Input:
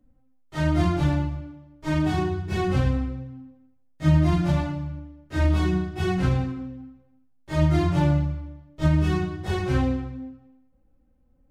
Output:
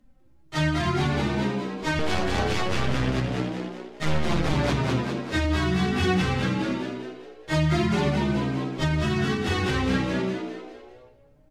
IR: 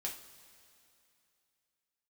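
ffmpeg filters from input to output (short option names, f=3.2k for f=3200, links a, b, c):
-filter_complex "[0:a]equalizer=f=3.4k:w=0.33:g=9.5,asettb=1/sr,asplit=3[a][b][c];[a]atrim=end=1.994[d];[b]atrim=start=1.99:end=4.53,asetpts=PTS-STARTPTS,afade=t=in:d=0.004:c=qsin,afade=t=out:st=2.536:d=0.004:c=qsin,aeval=exprs='0.473*(cos(1*acos(clip(val(0)/0.473,-1,1)))-cos(1*PI/2))+0.188*(cos(6*acos(clip(val(0)/0.473,-1,1)))-cos(6*PI/2))':c=same[e];[c]atrim=start=4.526[f];[d][e]acrossfade=d=0.004:c1=hsin:c2=qsin[g];[g][f]acrossfade=d=0.004:c1=qsin:c2=hsin,asplit=7[h][i][j][k][l][m][n];[i]adelay=200,afreqshift=60,volume=-3.5dB[o];[j]adelay=400,afreqshift=120,volume=-10.2dB[p];[k]adelay=600,afreqshift=180,volume=-17dB[q];[l]adelay=800,afreqshift=240,volume=-23.7dB[r];[m]adelay=1000,afreqshift=300,volume=-30.5dB[s];[n]adelay=1200,afreqshift=360,volume=-37.2dB[t];[h][o][p][q][r][s][t]amix=inputs=7:normalize=0,alimiter=limit=-16dB:level=0:latency=1:release=238,flanger=delay=4.8:depth=6.4:regen=38:speed=0.25:shape=triangular,volume=5.5dB"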